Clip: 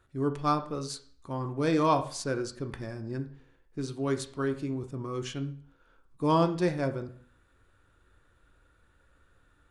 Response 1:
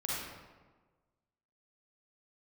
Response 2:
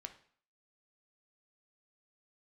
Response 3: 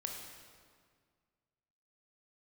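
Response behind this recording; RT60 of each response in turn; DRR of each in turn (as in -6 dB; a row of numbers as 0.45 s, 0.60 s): 2; 1.4 s, 0.55 s, 1.9 s; -6.5 dB, 6.5 dB, 1.0 dB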